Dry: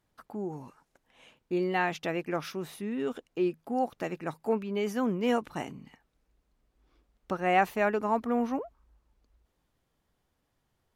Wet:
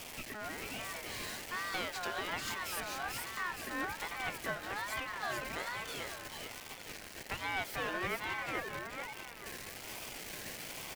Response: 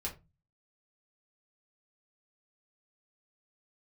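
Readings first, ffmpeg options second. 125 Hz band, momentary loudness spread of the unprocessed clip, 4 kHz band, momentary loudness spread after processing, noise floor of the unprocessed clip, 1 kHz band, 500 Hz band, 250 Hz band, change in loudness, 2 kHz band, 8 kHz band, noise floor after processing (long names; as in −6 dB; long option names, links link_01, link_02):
−9.0 dB, 12 LU, +5.0 dB, 8 LU, −78 dBFS, −7.5 dB, −13.0 dB, −16.0 dB, −8.5 dB, +0.5 dB, +9.0 dB, −49 dBFS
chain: -af "aeval=exprs='val(0)+0.5*0.0178*sgn(val(0))':channel_layout=same,highpass=580,bandreject=frequency=2400:width=5.6,acompressor=threshold=-34dB:ratio=2.5,aeval=exprs='clip(val(0),-1,0.0075)':channel_layout=same,aecho=1:1:442|884|1326|1768|2210:0.708|0.262|0.0969|0.0359|0.0133,aeval=exprs='val(0)*sin(2*PI*1300*n/s+1300*0.2/1.2*sin(2*PI*1.2*n/s))':channel_layout=same,volume=2.5dB"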